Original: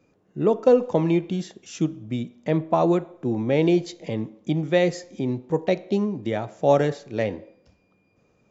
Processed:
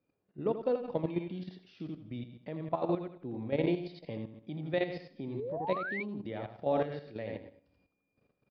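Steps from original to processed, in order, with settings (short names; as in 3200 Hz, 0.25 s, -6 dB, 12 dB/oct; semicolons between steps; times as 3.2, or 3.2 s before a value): steep low-pass 4900 Hz 72 dB/oct; resonator 280 Hz, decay 0.29 s, harmonics all, mix 40%; feedback echo 82 ms, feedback 35%, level -5 dB; level quantiser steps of 11 dB; painted sound rise, 5.34–6.03, 350–2400 Hz -32 dBFS; gain -5.5 dB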